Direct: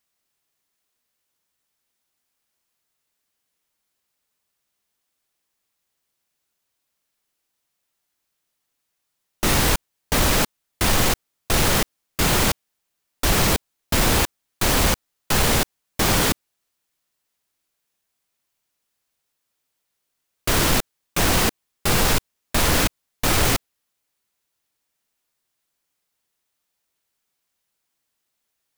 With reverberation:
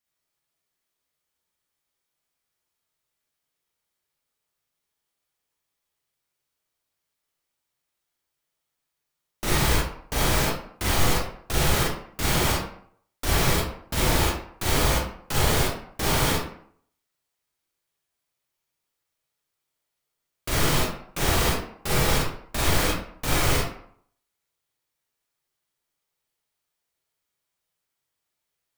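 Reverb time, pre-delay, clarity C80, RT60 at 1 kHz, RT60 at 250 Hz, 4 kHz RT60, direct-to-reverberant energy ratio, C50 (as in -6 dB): 0.60 s, 34 ms, 5.0 dB, 0.60 s, 0.60 s, 0.40 s, -5.0 dB, -0.5 dB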